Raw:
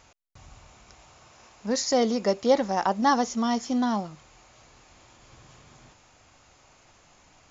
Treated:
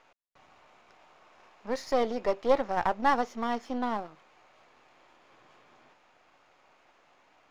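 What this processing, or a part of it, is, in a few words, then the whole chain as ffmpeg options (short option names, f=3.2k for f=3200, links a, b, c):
crystal radio: -af "highpass=340,lowpass=2.7k,aeval=exprs='if(lt(val(0),0),0.447*val(0),val(0))':c=same"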